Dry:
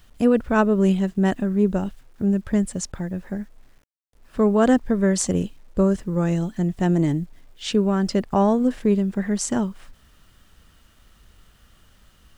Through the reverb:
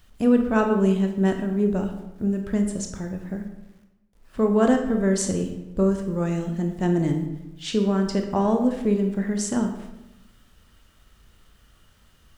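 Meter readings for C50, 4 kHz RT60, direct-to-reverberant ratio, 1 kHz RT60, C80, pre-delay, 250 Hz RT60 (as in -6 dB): 7.0 dB, 0.65 s, 4.0 dB, 0.90 s, 9.0 dB, 18 ms, 1.1 s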